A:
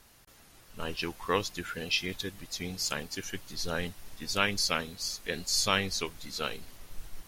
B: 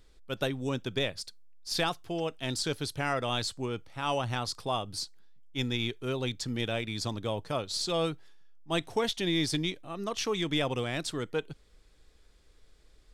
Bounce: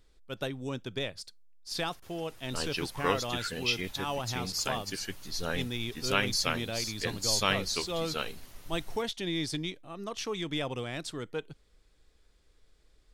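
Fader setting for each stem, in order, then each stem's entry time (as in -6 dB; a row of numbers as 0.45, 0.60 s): -0.5, -4.0 dB; 1.75, 0.00 s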